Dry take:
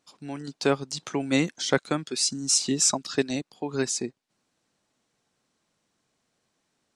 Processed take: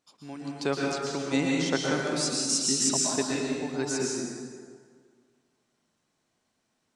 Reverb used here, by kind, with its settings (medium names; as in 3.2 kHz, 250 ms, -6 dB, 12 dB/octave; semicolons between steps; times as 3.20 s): plate-style reverb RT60 1.9 s, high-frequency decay 0.65×, pre-delay 105 ms, DRR -3 dB; trim -5.5 dB